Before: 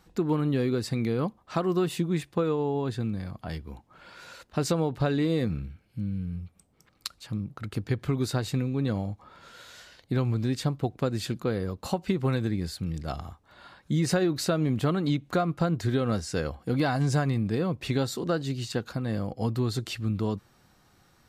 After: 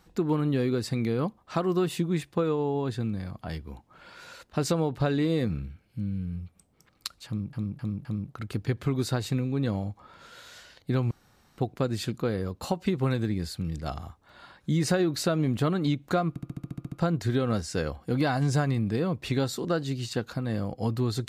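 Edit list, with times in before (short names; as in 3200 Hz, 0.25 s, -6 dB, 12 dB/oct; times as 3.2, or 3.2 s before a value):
7.27–7.53 loop, 4 plays
10.33–10.8 room tone
15.51 stutter 0.07 s, 10 plays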